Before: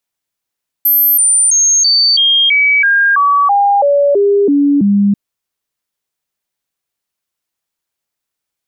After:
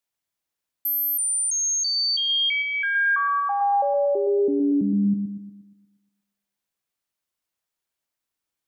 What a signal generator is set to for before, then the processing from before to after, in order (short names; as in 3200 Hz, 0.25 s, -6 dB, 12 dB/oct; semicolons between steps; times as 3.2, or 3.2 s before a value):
stepped sine 12900 Hz down, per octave 2, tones 13, 0.33 s, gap 0.00 s -7 dBFS
limiter -15 dBFS; resonator 310 Hz, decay 1.1 s, mix 50%; on a send: dark delay 0.119 s, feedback 48%, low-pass 2800 Hz, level -6.5 dB